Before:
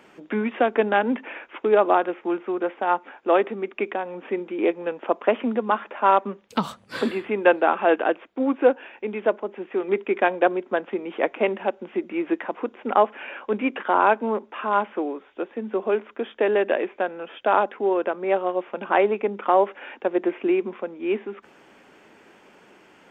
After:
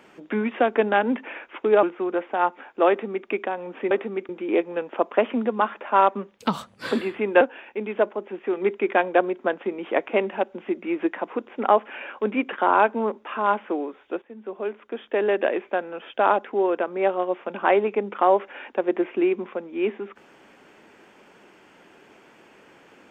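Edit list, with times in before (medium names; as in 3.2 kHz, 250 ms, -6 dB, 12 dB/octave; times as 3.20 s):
1.83–2.31 s: delete
3.37–3.75 s: copy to 4.39 s
7.51–8.68 s: delete
15.49–16.75 s: fade in linear, from -14 dB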